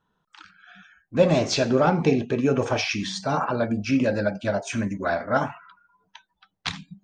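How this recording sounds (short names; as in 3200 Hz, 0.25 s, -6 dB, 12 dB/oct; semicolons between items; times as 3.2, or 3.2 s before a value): noise floor -76 dBFS; spectral tilt -5.0 dB/oct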